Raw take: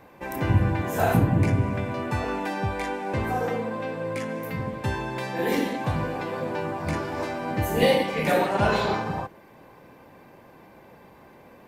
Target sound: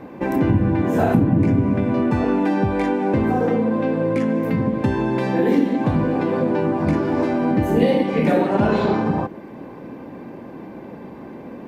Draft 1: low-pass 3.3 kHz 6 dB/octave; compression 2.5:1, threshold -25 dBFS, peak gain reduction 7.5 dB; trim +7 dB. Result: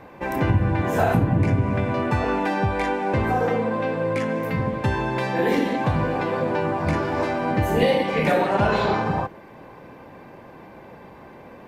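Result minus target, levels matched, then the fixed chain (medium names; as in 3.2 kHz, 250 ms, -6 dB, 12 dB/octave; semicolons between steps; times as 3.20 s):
250 Hz band -4.0 dB
low-pass 3.3 kHz 6 dB/octave; peaking EQ 260 Hz +13 dB 1.6 oct; compression 2.5:1, threshold -25 dBFS, peak gain reduction 12 dB; trim +7 dB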